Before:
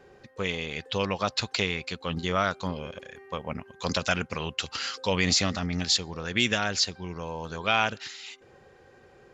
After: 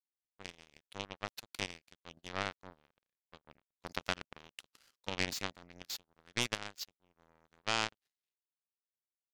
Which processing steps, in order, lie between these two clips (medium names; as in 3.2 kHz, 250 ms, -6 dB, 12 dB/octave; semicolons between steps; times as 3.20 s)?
resonant low shelf 100 Hz -6.5 dB, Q 1.5; power-law waveshaper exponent 3; trim -2 dB